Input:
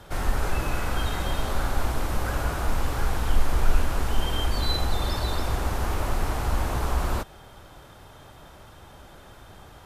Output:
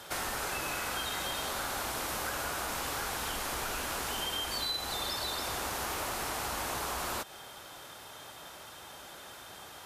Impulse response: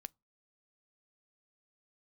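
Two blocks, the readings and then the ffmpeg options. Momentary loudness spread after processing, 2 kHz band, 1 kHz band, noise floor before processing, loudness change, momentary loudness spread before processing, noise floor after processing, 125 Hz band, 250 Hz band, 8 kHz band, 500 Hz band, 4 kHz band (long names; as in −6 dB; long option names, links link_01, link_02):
14 LU, −2.0 dB, −4.5 dB, −49 dBFS, −5.5 dB, 21 LU, −49 dBFS, −19.0 dB, −10.0 dB, +3.0 dB, −6.5 dB, 0.0 dB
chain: -af "highpass=frequency=410:poles=1,highshelf=frequency=2300:gain=8.5,acompressor=threshold=-32dB:ratio=6"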